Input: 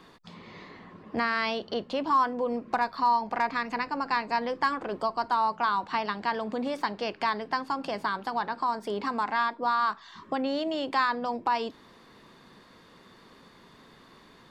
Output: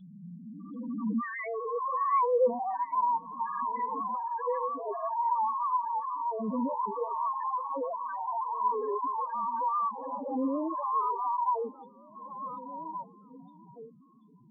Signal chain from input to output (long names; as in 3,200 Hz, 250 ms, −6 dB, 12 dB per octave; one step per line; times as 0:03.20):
peak hold with a rise ahead of every peak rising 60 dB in 2.38 s
in parallel at −3.5 dB: wave folding −18.5 dBFS
on the sum: high-shelf EQ 4,800 Hz +10.5 dB
0:02.65–0:03.45: output level in coarse steps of 19 dB
0:04.03–0:04.72: hard clipping −20.5 dBFS, distortion −18 dB
spectral peaks only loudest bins 2
low-shelf EQ 410 Hz +9.5 dB
tuned comb filter 500 Hz, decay 0.23 s, harmonics all, mix 60%
on a send: echo through a band-pass that steps 736 ms, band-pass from 3,000 Hz, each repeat −1.4 octaves, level −7 dB
on the sum: pitch vibrato 7.5 Hz 45 cents